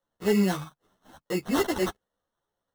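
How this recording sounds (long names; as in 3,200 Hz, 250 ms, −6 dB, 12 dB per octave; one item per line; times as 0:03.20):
aliases and images of a low sample rate 2,400 Hz, jitter 0%
a shimmering, thickened sound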